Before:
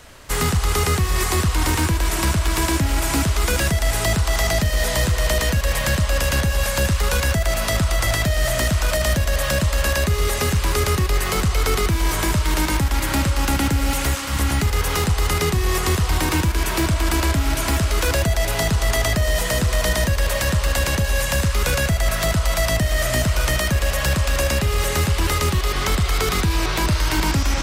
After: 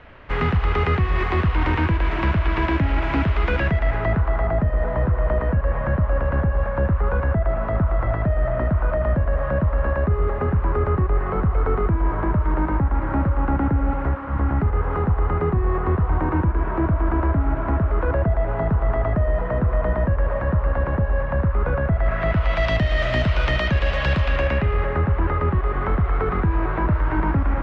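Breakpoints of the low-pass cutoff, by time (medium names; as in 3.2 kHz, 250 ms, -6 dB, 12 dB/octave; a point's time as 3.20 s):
low-pass 24 dB/octave
3.55 s 2.6 kHz
4.52 s 1.4 kHz
21.85 s 1.4 kHz
22.69 s 3.4 kHz
24.17 s 3.4 kHz
25.01 s 1.6 kHz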